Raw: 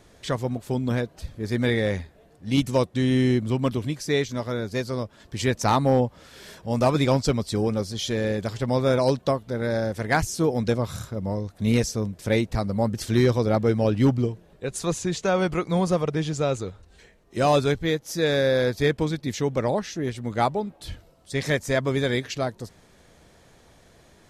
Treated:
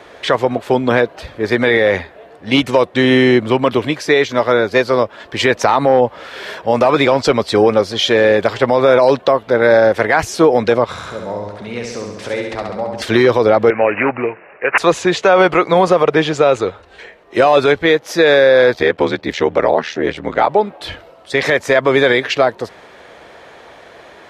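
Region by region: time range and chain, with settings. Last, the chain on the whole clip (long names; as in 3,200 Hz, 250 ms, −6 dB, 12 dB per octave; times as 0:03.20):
0:10.84–0:13.02: low-pass filter 10,000 Hz 24 dB per octave + downward compressor 4 to 1, threshold −36 dBFS + flutter between parallel walls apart 11.6 metres, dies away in 1 s
0:13.70–0:14.78: spectral tilt +3.5 dB per octave + downward compressor 2 to 1, threshold −27 dBFS + bad sample-rate conversion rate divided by 8×, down none, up filtered
0:18.73–0:20.49: parametric band 11,000 Hz −6.5 dB 0.94 octaves + notch filter 1,100 Hz, Q 28 + ring modulation 39 Hz
whole clip: high-pass filter 46 Hz; three-way crossover with the lows and the highs turned down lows −18 dB, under 370 Hz, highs −18 dB, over 3,500 Hz; boost into a limiter +20.5 dB; level −1 dB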